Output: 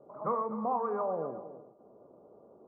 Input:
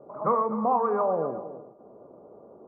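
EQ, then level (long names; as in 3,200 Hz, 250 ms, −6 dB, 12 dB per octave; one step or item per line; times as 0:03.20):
high-frequency loss of the air 130 metres
−7.0 dB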